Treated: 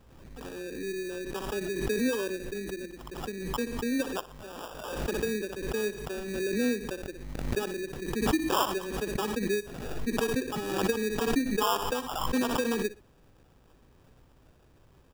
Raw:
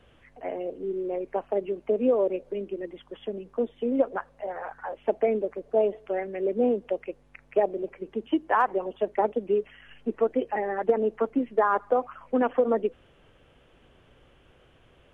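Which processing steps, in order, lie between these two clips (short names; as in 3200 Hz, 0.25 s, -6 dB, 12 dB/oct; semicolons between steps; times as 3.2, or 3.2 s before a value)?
fixed phaser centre 1600 Hz, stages 4; sample-rate reducer 2100 Hz, jitter 0%; on a send: feedback echo 61 ms, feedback 25%, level -17 dB; on the sum: backwards sustainer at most 41 dB/s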